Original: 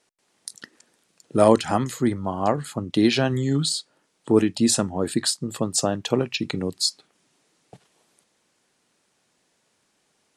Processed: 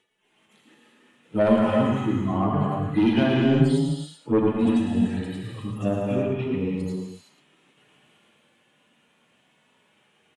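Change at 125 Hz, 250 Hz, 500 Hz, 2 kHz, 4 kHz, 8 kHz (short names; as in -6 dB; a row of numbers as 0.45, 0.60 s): +2.5 dB, +1.5 dB, -1.5 dB, -1.0 dB, -11.5 dB, under -20 dB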